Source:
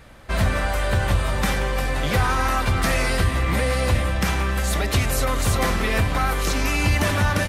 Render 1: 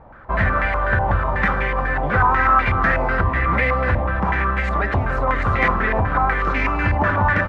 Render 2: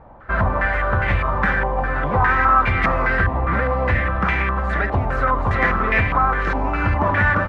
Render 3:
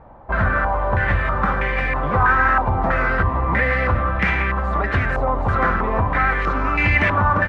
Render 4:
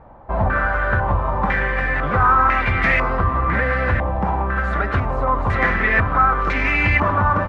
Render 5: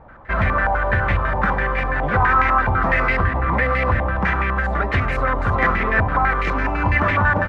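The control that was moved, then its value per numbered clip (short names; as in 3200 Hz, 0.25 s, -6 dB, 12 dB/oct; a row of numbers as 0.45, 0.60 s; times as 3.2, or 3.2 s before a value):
stepped low-pass, rate: 8.1, 4.9, 3.1, 2, 12 Hz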